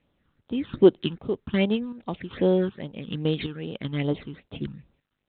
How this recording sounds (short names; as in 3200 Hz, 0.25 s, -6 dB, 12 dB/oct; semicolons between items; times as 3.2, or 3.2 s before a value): chopped level 1.3 Hz, depth 60%, duty 50%; phasing stages 8, 2.5 Hz, lowest notch 600–2000 Hz; G.726